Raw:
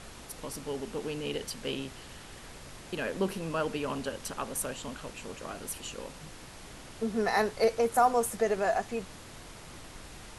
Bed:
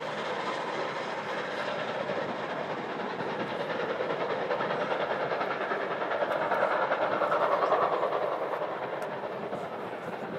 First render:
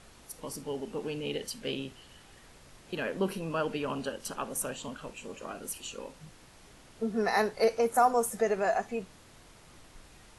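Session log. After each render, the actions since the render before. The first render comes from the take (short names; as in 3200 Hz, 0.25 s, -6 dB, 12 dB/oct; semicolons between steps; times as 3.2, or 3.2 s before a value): noise print and reduce 8 dB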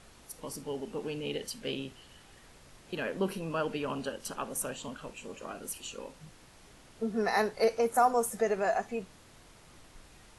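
gain -1 dB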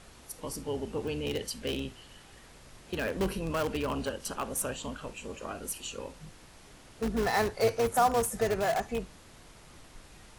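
octaver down 2 oct, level -5 dB; in parallel at -9 dB: wrapped overs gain 26 dB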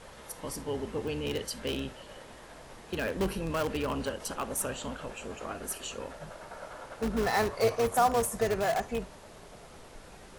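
add bed -17.5 dB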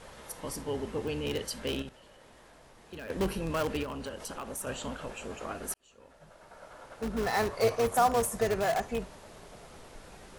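1.82–3.1 level quantiser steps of 14 dB; 3.83–4.67 compressor 2.5:1, threshold -37 dBFS; 5.74–7.64 fade in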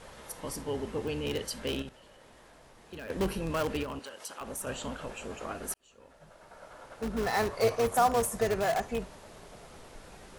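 3.99–4.41 HPF 940 Hz 6 dB/oct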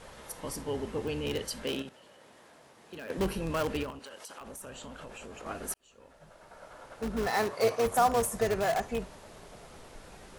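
1.64–3.18 HPF 140 Hz; 3.9–5.46 compressor, threshold -41 dBFS; 7.27–7.86 HPF 140 Hz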